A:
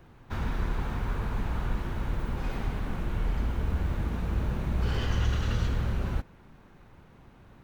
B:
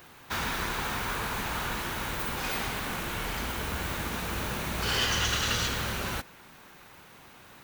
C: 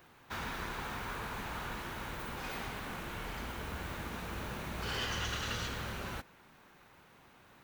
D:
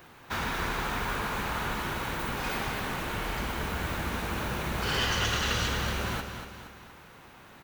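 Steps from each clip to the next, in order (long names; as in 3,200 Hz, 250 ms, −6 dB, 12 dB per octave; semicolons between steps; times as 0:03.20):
spectral tilt +4 dB per octave; level +6.5 dB
high-shelf EQ 3,400 Hz −7 dB; level −7 dB
repeating echo 235 ms, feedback 48%, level −8 dB; level +8 dB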